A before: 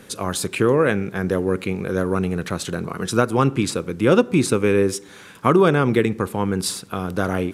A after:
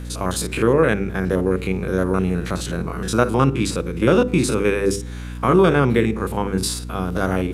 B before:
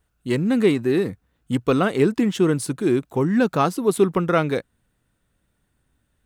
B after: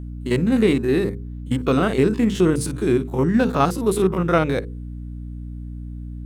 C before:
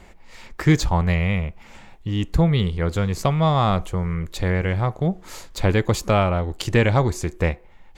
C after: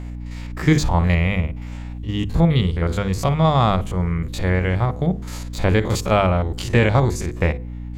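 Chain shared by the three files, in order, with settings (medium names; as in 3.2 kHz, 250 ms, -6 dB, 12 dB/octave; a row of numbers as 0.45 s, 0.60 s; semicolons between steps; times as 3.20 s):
spectrogram pixelated in time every 50 ms; hum notches 50/100/150/200/250/300/350/400/450/500 Hz; hum 60 Hz, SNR 11 dB; normalise loudness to -20 LUFS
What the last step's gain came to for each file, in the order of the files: +2.5 dB, +3.0 dB, +3.0 dB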